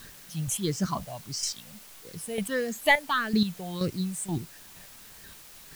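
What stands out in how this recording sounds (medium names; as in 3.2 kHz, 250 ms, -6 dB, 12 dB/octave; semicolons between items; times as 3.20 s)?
chopped level 2.1 Hz, depth 65%, duty 20%; phasing stages 6, 1.6 Hz, lowest notch 320–1000 Hz; a quantiser's noise floor 10-bit, dither triangular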